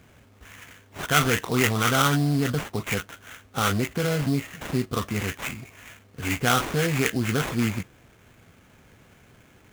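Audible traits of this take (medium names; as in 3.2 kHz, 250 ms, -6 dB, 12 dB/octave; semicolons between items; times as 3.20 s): aliases and images of a low sample rate 4.7 kHz, jitter 20%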